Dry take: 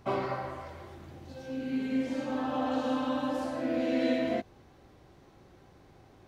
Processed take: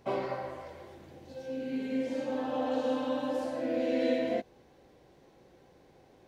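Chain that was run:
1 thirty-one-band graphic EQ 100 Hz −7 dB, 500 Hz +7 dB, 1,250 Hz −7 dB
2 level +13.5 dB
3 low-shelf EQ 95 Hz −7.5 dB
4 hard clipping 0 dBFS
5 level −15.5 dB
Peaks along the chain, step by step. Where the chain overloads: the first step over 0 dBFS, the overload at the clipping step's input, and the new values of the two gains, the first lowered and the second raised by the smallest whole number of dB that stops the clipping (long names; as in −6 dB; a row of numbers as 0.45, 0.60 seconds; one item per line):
−14.5, −1.0, −2.0, −2.0, −17.5 dBFS
no step passes full scale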